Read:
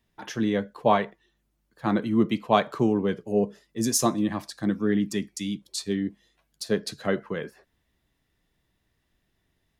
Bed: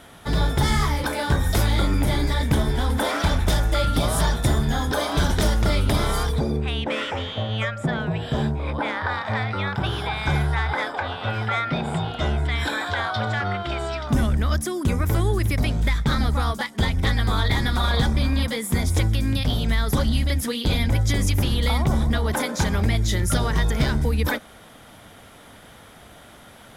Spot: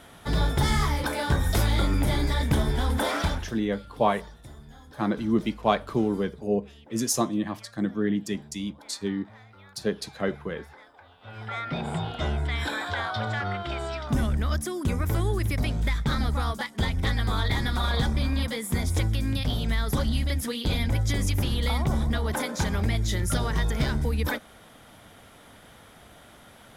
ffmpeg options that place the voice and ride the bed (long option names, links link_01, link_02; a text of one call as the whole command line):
ffmpeg -i stem1.wav -i stem2.wav -filter_complex "[0:a]adelay=3150,volume=-2dB[link_01];[1:a]volume=18dB,afade=type=out:start_time=3.19:duration=0.32:silence=0.0749894,afade=type=in:start_time=11.2:duration=0.66:silence=0.0891251[link_02];[link_01][link_02]amix=inputs=2:normalize=0" out.wav